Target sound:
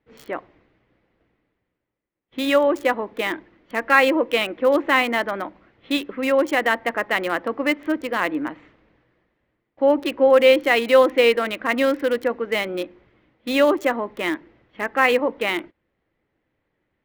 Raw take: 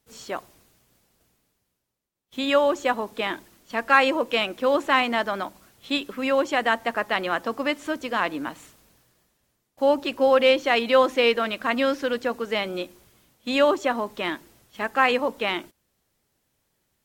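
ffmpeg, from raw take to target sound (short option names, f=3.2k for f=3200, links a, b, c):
-filter_complex "[0:a]equalizer=f=315:t=o:w=0.33:g=8,equalizer=f=500:t=o:w=0.33:g=5,equalizer=f=2k:t=o:w=0.33:g=7,acrossover=split=3000[a][b];[b]acrusher=bits=5:mix=0:aa=0.000001[c];[a][c]amix=inputs=2:normalize=0"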